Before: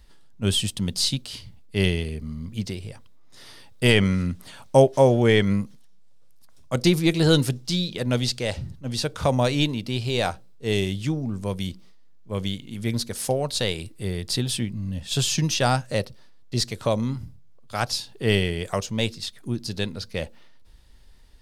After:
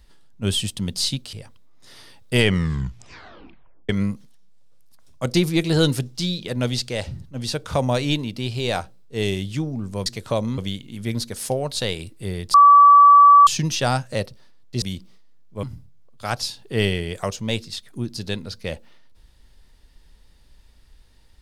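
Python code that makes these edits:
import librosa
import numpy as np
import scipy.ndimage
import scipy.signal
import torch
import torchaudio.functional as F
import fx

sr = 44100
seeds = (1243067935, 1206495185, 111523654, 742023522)

y = fx.edit(x, sr, fx.cut(start_s=1.33, length_s=1.5),
    fx.tape_stop(start_s=3.97, length_s=1.42),
    fx.swap(start_s=11.56, length_s=0.81, other_s=16.61, other_length_s=0.52),
    fx.bleep(start_s=14.33, length_s=0.93, hz=1150.0, db=-6.5), tone=tone)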